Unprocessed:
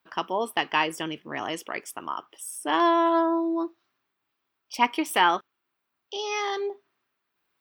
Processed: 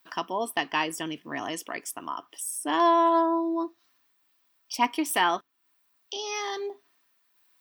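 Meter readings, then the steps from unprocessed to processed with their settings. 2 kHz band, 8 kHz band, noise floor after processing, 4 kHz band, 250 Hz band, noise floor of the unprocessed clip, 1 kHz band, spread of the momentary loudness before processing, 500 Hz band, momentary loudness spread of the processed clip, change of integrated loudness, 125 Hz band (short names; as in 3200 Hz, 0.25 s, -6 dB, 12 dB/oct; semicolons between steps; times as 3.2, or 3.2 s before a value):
-2.5 dB, +3.5 dB, -70 dBFS, -2.0 dB, -1.5 dB, -81 dBFS, -1.0 dB, 13 LU, -1.0 dB, 14 LU, -1.5 dB, n/a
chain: tone controls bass +3 dB, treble +9 dB; small resonant body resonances 280/690/1000/1800 Hz, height 7 dB; mismatched tape noise reduction encoder only; gain -5 dB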